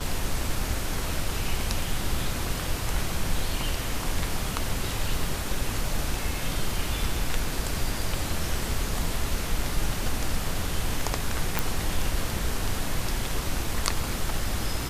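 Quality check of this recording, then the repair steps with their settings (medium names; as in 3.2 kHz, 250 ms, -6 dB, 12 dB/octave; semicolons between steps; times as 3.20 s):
11.59 s: pop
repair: de-click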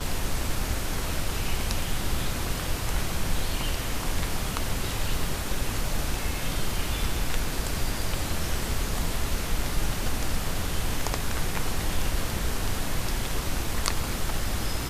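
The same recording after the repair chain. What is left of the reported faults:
nothing left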